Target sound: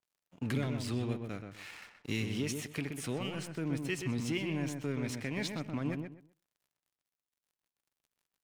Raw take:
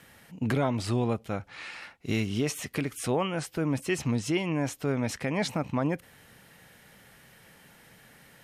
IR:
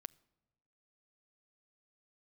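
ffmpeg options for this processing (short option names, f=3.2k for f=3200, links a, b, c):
-filter_complex "[0:a]lowshelf=f=350:g=-4.5,acrossover=split=410|1700|2700[a][b][c][d];[b]acompressor=threshold=-49dB:ratio=6[e];[a][e][c][d]amix=inputs=4:normalize=0,aeval=exprs='sgn(val(0))*max(abs(val(0))-0.00422,0)':c=same,asplit=2[f][g];[g]adelay=126,lowpass=f=1.9k:p=1,volume=-5dB,asplit=2[h][i];[i]adelay=126,lowpass=f=1.9k:p=1,volume=0.23,asplit=2[j][k];[k]adelay=126,lowpass=f=1.9k:p=1,volume=0.23[l];[f][h][j][l]amix=inputs=4:normalize=0[m];[1:a]atrim=start_sample=2205,afade=t=out:st=0.18:d=0.01,atrim=end_sample=8379[n];[m][n]afir=irnorm=-1:irlink=0,adynamicequalizer=threshold=0.00141:dfrequency=4200:dqfactor=0.7:tfrequency=4200:tqfactor=0.7:attack=5:release=100:ratio=0.375:range=1.5:mode=cutabove:tftype=highshelf,volume=3.5dB"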